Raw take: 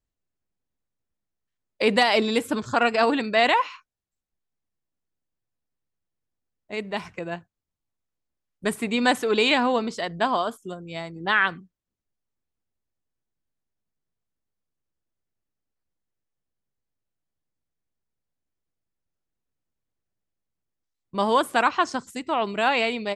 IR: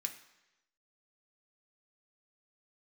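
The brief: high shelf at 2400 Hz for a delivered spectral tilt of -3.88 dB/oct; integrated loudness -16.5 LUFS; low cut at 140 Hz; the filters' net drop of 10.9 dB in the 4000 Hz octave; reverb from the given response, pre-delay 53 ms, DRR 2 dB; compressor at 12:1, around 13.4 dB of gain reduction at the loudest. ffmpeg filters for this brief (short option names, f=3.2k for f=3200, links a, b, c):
-filter_complex "[0:a]highpass=140,highshelf=f=2.4k:g=-8,equalizer=f=4k:t=o:g=-8,acompressor=threshold=-30dB:ratio=12,asplit=2[a][b];[1:a]atrim=start_sample=2205,adelay=53[c];[b][c]afir=irnorm=-1:irlink=0,volume=-1dB[d];[a][d]amix=inputs=2:normalize=0,volume=18dB"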